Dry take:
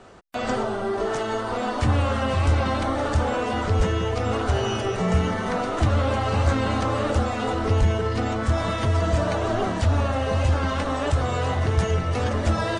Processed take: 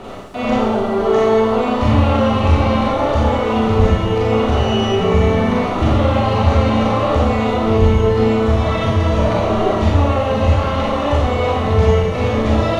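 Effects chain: thirty-one-band EQ 1600 Hz -9 dB, 5000 Hz -6 dB, 8000 Hz -12 dB; reverse; upward compressor, threshold -24 dBFS; reverse; added noise blue -53 dBFS; air absorption 72 m; Schroeder reverb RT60 0.92 s, combs from 28 ms, DRR -5.5 dB; gain +2.5 dB

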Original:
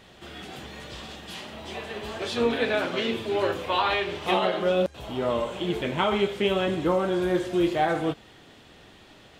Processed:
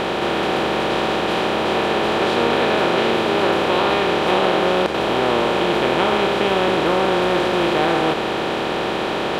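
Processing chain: per-bin compression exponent 0.2; gain -2 dB

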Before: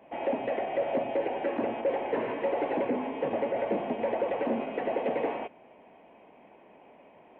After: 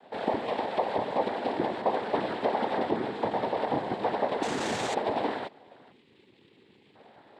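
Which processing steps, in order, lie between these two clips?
4.42–4.94 infinite clipping; 5.92–6.95 spectral delete 410–1600 Hz; noise vocoder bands 6; gain +1 dB

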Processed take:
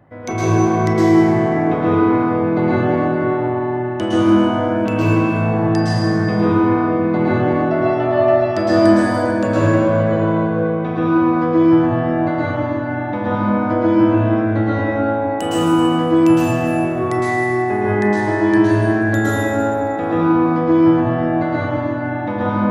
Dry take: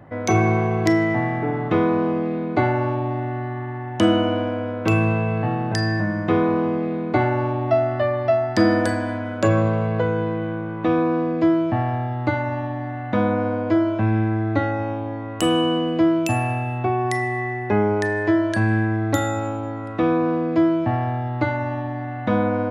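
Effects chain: plate-style reverb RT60 3.8 s, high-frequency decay 0.4×, pre-delay 0.1 s, DRR -10 dB; gain -6 dB

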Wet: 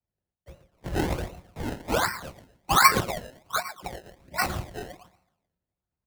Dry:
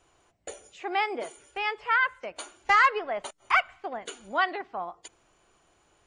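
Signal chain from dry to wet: 2.11–4.44 loudest bins only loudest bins 8; air absorption 160 m; feedback echo 0.126 s, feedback 52%, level -13 dB; LPC vocoder at 8 kHz whisper; HPF 55 Hz; low shelf 240 Hz +11.5 dB; resonator 180 Hz, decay 0.16 s, harmonics all, mix 70%; speakerphone echo 0.11 s, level -12 dB; decimation with a swept rate 26×, swing 100% 1.3 Hz; three-band expander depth 70%; gain +4 dB

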